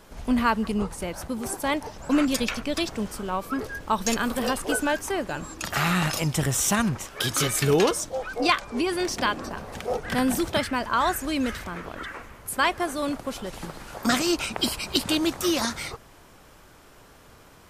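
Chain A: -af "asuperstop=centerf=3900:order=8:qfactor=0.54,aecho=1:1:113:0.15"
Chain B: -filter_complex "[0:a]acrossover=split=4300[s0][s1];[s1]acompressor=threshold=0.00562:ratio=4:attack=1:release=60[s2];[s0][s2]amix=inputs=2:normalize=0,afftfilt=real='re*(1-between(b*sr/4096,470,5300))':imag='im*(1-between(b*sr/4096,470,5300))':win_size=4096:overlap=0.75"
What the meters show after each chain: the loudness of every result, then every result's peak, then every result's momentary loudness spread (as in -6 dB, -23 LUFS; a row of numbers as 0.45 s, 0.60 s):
-27.5 LUFS, -29.5 LUFS; -10.5 dBFS, -11.0 dBFS; 11 LU, 13 LU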